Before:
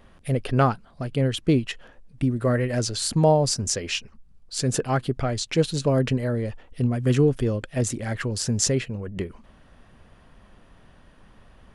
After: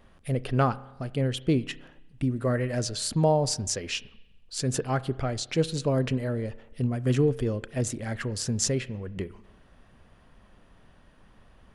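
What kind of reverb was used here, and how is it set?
spring tank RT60 1 s, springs 31 ms, chirp 55 ms, DRR 17.5 dB; gain -4 dB

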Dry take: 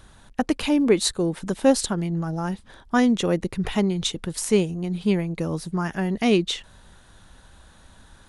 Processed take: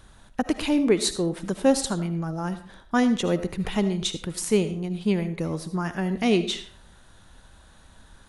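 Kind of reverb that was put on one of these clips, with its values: digital reverb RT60 0.47 s, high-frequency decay 0.7×, pre-delay 35 ms, DRR 11 dB; gain -2 dB

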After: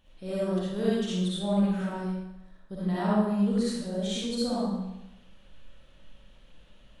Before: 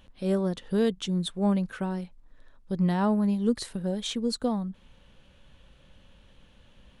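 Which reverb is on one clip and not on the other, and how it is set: digital reverb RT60 0.92 s, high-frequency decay 0.95×, pre-delay 20 ms, DRR -9 dB; gain -9.5 dB

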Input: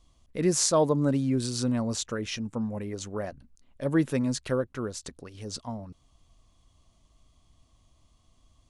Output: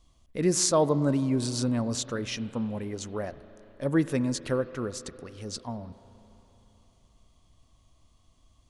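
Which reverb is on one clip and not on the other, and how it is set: spring tank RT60 3.5 s, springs 33/42 ms, chirp 65 ms, DRR 14 dB

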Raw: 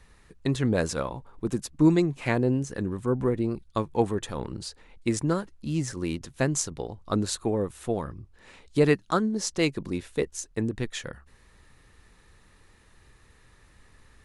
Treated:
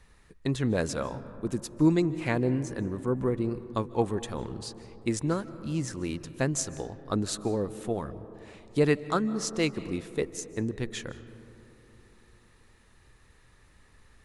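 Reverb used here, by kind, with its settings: digital reverb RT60 3.3 s, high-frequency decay 0.25×, pre-delay 0.115 s, DRR 14.5 dB; gain -2.5 dB

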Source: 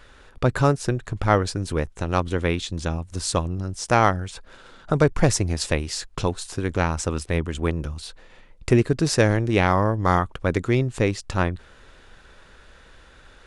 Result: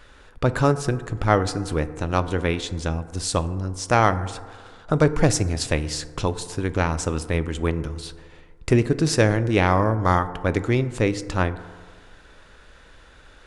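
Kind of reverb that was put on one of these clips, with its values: FDN reverb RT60 1.7 s, low-frequency decay 0.85×, high-frequency decay 0.3×, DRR 12 dB

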